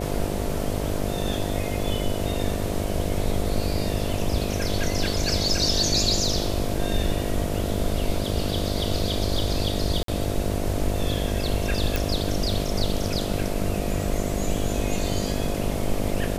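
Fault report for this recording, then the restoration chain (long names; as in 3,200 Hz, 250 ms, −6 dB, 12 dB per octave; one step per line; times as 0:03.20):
mains buzz 50 Hz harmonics 14 −29 dBFS
0:10.03–0:10.08: drop-out 53 ms
0:11.96: click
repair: click removal
hum removal 50 Hz, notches 14
repair the gap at 0:10.03, 53 ms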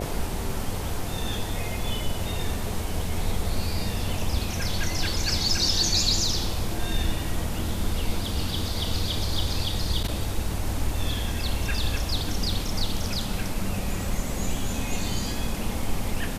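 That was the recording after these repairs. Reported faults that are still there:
none of them is left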